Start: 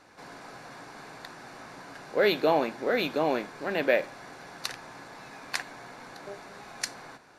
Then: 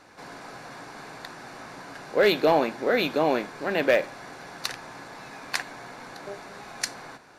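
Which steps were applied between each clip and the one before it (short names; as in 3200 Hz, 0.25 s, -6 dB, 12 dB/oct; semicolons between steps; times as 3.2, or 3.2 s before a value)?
hard clip -15 dBFS, distortion -22 dB; gain +3.5 dB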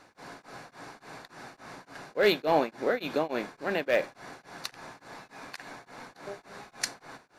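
beating tremolo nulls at 3.5 Hz; gain -2 dB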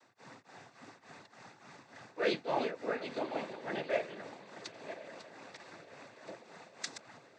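reverse delay 0.493 s, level -9.5 dB; diffused feedback echo 1.037 s, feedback 52%, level -15 dB; noise vocoder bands 16; gain -8 dB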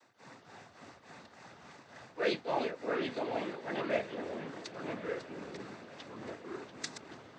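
echoes that change speed 0.133 s, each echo -4 st, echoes 3, each echo -6 dB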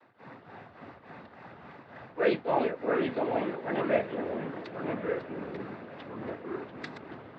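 air absorption 440 m; gain +7.5 dB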